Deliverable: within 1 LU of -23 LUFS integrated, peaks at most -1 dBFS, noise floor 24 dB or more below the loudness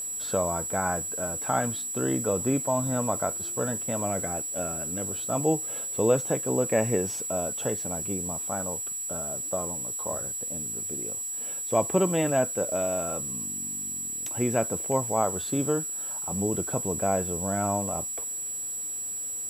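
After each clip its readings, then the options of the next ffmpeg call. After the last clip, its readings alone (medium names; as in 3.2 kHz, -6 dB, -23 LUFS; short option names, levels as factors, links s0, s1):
steady tone 7.8 kHz; tone level -31 dBFS; noise floor -34 dBFS; noise floor target -52 dBFS; loudness -27.5 LUFS; peak level -8.5 dBFS; loudness target -23.0 LUFS
-> -af "bandreject=f=7800:w=30"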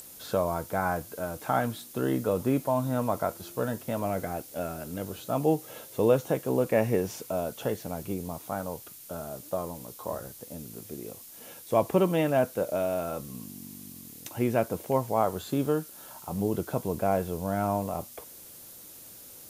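steady tone not found; noise floor -48 dBFS; noise floor target -54 dBFS
-> -af "afftdn=nr=6:nf=-48"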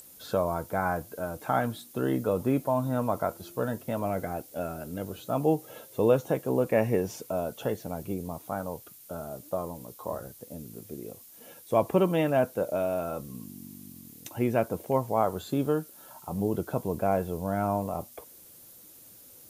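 noise floor -52 dBFS; noise floor target -54 dBFS
-> -af "afftdn=nr=6:nf=-52"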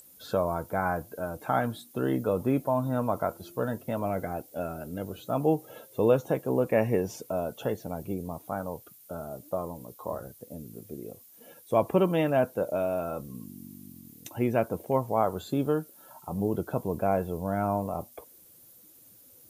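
noise floor -55 dBFS; loudness -30.0 LUFS; peak level -9.5 dBFS; loudness target -23.0 LUFS
-> -af "volume=2.24"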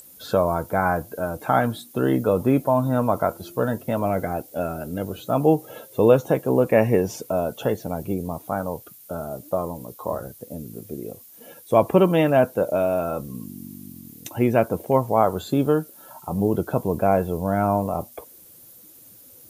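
loudness -23.0 LUFS; peak level -2.5 dBFS; noise floor -48 dBFS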